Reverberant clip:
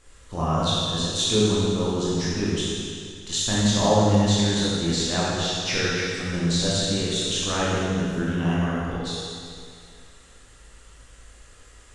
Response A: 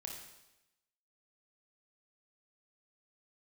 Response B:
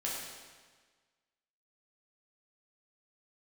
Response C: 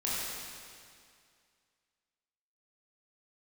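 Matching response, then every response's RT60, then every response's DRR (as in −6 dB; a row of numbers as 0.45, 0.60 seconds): C; 0.95, 1.5, 2.2 seconds; 0.0, −5.5, −8.0 decibels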